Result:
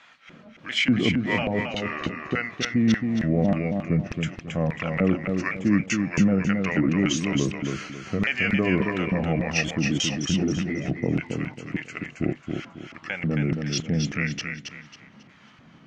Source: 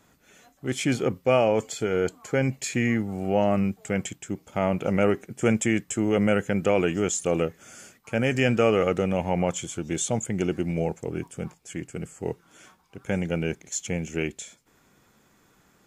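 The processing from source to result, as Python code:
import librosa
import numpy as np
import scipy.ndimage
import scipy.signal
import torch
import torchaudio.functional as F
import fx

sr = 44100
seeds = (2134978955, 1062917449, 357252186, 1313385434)

p1 = fx.pitch_ramps(x, sr, semitones=-4.0, every_ms=689)
p2 = scipy.signal.sosfilt(scipy.signal.butter(2, 3900.0, 'lowpass', fs=sr, output='sos'), p1)
p3 = fx.peak_eq(p2, sr, hz=390.0, db=-9.5, octaves=0.54)
p4 = fx.over_compress(p3, sr, threshold_db=-37.0, ratio=-1.0)
p5 = p3 + (p4 * 10.0 ** (0.0 / 20.0))
p6 = fx.filter_lfo_bandpass(p5, sr, shape='square', hz=1.7, low_hz=240.0, high_hz=2600.0, q=1.1)
p7 = p6 + fx.echo_feedback(p6, sr, ms=272, feedback_pct=32, wet_db=-5.0, dry=0)
y = p7 * 10.0 ** (6.5 / 20.0)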